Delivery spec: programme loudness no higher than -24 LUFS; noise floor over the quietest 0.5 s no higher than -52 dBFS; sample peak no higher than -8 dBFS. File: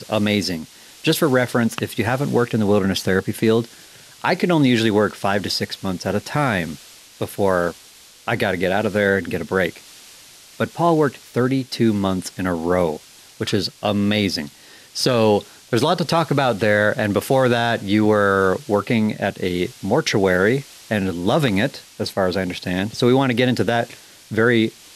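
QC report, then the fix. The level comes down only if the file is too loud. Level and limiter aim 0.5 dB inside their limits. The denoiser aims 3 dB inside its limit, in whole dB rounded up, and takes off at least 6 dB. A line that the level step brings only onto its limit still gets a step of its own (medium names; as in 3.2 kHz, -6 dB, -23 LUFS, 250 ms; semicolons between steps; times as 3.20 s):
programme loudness -20.0 LUFS: fail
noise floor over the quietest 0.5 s -46 dBFS: fail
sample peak -5.0 dBFS: fail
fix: noise reduction 6 dB, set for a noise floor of -46 dBFS; trim -4.5 dB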